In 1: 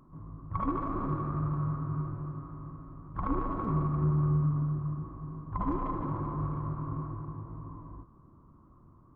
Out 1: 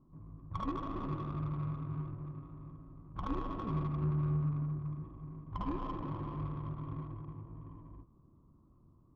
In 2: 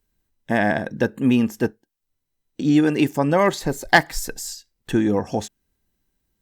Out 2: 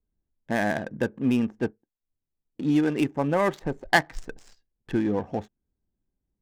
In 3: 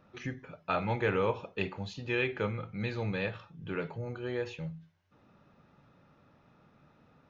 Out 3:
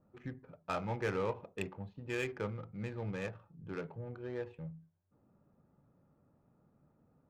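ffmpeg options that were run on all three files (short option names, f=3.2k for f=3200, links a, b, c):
-af "adynamicsmooth=sensitivity=4:basefreq=860,adynamicequalizer=threshold=0.00251:dfrequency=4400:dqfactor=2.1:tfrequency=4400:tqfactor=2.1:attack=5:release=100:ratio=0.375:range=3:mode=cutabove:tftype=bell,volume=-5.5dB"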